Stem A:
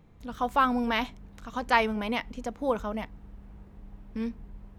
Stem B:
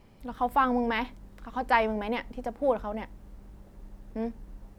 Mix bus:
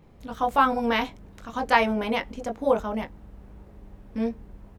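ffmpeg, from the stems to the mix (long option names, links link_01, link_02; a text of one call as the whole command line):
ffmpeg -i stem1.wav -i stem2.wav -filter_complex "[0:a]volume=2dB[link_01];[1:a]equalizer=frequency=480:width_type=o:width=2.1:gain=9,volume=-1,adelay=21,volume=-6.5dB[link_02];[link_01][link_02]amix=inputs=2:normalize=0" out.wav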